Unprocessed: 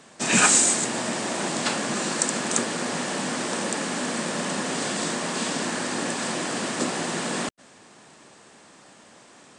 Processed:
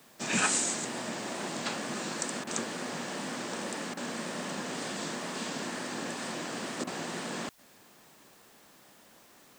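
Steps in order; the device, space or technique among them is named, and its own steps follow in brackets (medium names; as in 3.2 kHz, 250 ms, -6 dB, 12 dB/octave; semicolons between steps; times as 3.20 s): worn cassette (low-pass 7.8 kHz 12 dB/octave; wow and flutter; level dips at 2.44/3.94/6.84 s, 29 ms -8 dB; white noise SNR 26 dB); trim -8.5 dB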